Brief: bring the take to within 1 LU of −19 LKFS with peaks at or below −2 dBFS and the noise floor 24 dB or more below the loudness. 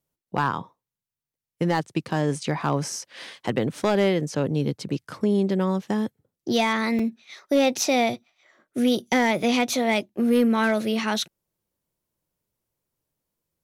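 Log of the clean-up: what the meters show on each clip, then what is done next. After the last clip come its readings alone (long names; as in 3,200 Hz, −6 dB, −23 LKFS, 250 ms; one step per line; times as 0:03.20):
share of clipped samples 0.3%; peaks flattened at −13.0 dBFS; number of dropouts 1; longest dropout 3.8 ms; integrated loudness −24.0 LKFS; sample peak −13.0 dBFS; target loudness −19.0 LKFS
→ clipped peaks rebuilt −13 dBFS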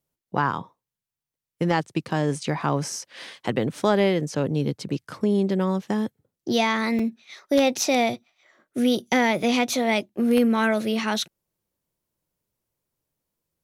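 share of clipped samples 0.0%; number of dropouts 1; longest dropout 3.8 ms
→ repair the gap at 0:06.99, 3.8 ms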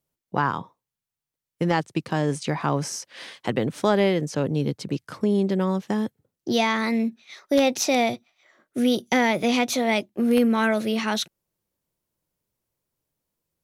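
number of dropouts 0; integrated loudness −24.0 LKFS; sample peak −5.0 dBFS; target loudness −19.0 LKFS
→ level +5 dB
brickwall limiter −2 dBFS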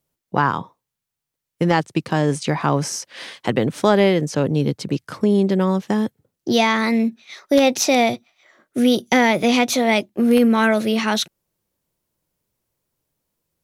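integrated loudness −19.0 LKFS; sample peak −2.0 dBFS; background noise floor −83 dBFS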